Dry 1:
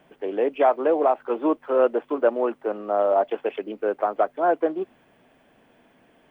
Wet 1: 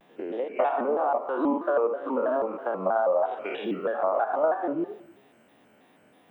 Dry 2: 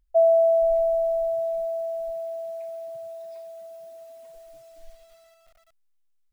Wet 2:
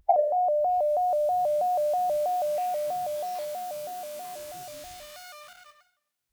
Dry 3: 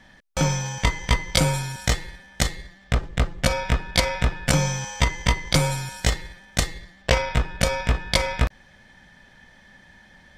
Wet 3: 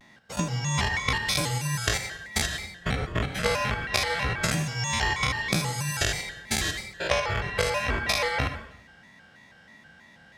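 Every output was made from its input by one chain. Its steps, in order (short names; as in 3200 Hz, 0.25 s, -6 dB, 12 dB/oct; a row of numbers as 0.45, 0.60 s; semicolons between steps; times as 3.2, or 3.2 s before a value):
stepped spectrum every 0.1 s; HPF 100 Hz 12 dB/oct; compressor 12:1, threshold -30 dBFS; spectral noise reduction 10 dB; plate-style reverb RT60 0.68 s, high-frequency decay 0.9×, pre-delay 75 ms, DRR 8.5 dB; shaped vibrato square 3.1 Hz, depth 160 cents; match loudness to -27 LUFS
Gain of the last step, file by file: +10.0, +17.5, +9.5 dB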